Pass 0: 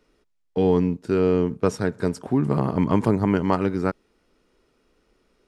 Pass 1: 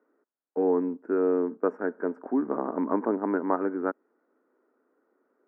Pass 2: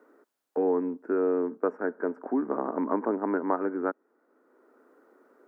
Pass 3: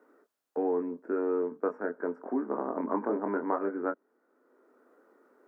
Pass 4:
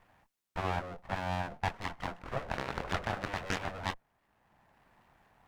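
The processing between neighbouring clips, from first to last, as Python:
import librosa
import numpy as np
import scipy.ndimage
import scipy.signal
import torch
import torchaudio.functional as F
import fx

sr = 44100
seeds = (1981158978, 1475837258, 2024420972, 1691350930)

y1 = scipy.signal.sosfilt(scipy.signal.ellip(3, 1.0, 40, [260.0, 1600.0], 'bandpass', fs=sr, output='sos'), x)
y1 = y1 * 10.0 ** (-3.0 / 20.0)
y2 = fx.low_shelf(y1, sr, hz=150.0, db=-8.0)
y2 = fx.band_squash(y2, sr, depth_pct=40)
y3 = fx.chorus_voices(y2, sr, voices=4, hz=0.38, base_ms=24, depth_ms=1.2, mix_pct=35)
y4 = np.abs(y3)
y4 = fx.cheby_harmonics(y4, sr, harmonics=(7,), levels_db=(-6,), full_scale_db=-15.5)
y4 = y4 * 10.0 ** (-6.0 / 20.0)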